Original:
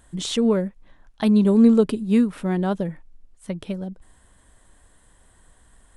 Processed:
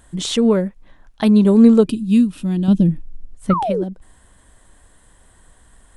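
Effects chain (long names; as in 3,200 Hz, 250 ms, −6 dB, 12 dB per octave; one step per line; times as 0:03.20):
0:03.50–0:03.84: sound drawn into the spectrogram fall 330–1,400 Hz −25 dBFS
0:02.68–0:03.54: low-shelf EQ 450 Hz +11 dB
0:01.87–0:03.02: gain on a spectral selection 360–2,400 Hz −13 dB
level +4.5 dB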